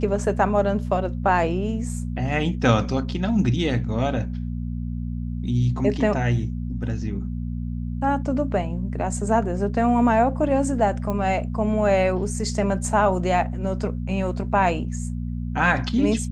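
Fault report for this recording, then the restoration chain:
hum 60 Hz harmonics 4 -28 dBFS
11.10 s: pop -15 dBFS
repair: de-click; de-hum 60 Hz, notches 4

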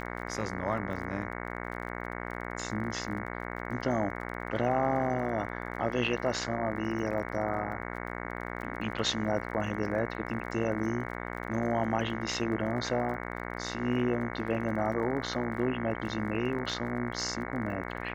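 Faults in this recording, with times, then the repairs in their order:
buzz 60 Hz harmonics 37 -38 dBFS
crackle 30 per s -41 dBFS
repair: de-click; de-hum 60 Hz, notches 37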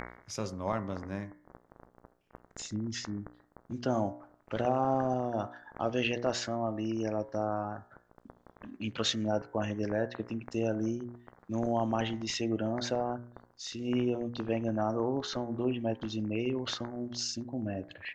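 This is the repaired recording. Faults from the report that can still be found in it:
nothing left

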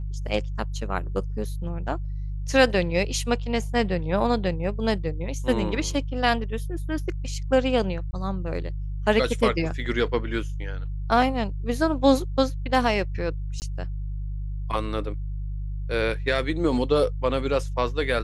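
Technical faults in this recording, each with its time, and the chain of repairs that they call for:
hum 50 Hz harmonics 3 -30 dBFS
8.11–8.13 s: dropout 20 ms
13.60–13.62 s: dropout 19 ms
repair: de-hum 50 Hz, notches 3; interpolate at 8.11 s, 20 ms; interpolate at 13.60 s, 19 ms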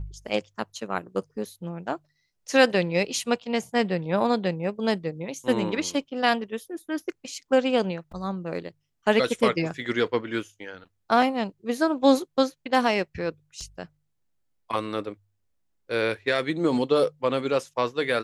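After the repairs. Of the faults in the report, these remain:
nothing left

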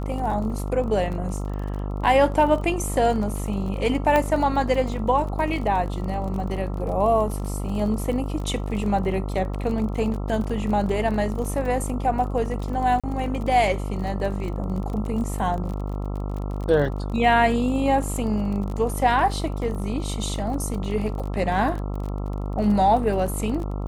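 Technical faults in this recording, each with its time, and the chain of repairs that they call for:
buzz 50 Hz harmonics 27 -28 dBFS
crackle 36 per s -31 dBFS
4.16 s: pop -9 dBFS
13.00–13.04 s: dropout 36 ms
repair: de-click; de-hum 50 Hz, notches 27; interpolate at 13.00 s, 36 ms

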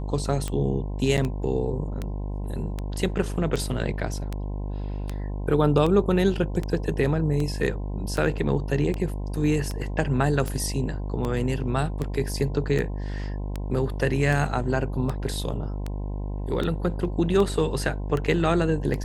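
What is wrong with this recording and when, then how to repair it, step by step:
buzz 50 Hz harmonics 21 -30 dBFS
tick 78 rpm -16 dBFS
1.17–1.18 s: dropout 8 ms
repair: de-click; de-hum 50 Hz, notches 21; interpolate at 1.17 s, 8 ms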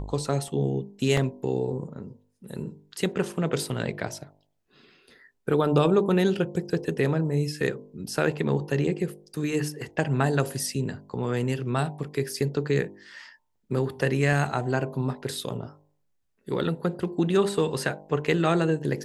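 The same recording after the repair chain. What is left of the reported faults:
nothing left

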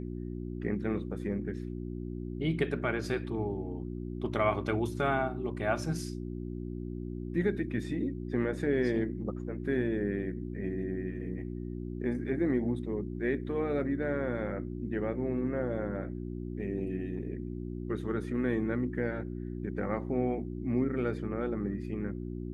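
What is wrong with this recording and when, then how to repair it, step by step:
hum 60 Hz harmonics 6 -38 dBFS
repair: de-hum 60 Hz, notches 6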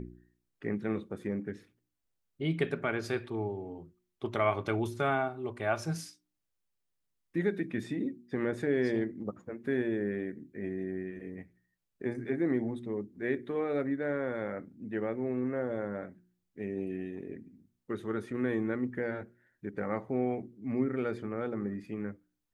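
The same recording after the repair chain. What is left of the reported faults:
nothing left

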